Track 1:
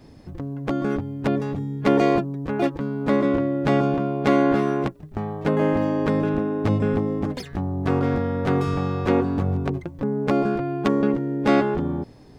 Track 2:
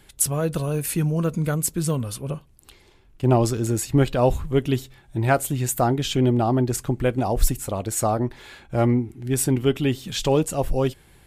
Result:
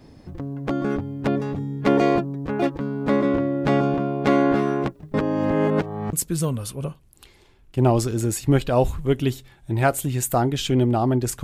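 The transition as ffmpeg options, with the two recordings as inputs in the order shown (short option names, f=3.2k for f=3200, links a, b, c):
-filter_complex "[0:a]apad=whole_dur=11.43,atrim=end=11.43,asplit=2[a][b];[a]atrim=end=5.142[c];[b]atrim=start=5.138:end=6.132,asetpts=PTS-STARTPTS,areverse[d];[1:a]atrim=start=1.588:end=6.89[e];[c][d]acrossfade=d=0.004:c1=hsin:c2=hsin[f];[f][e]acrossfade=d=0.004:c1=hsin:c2=hsin"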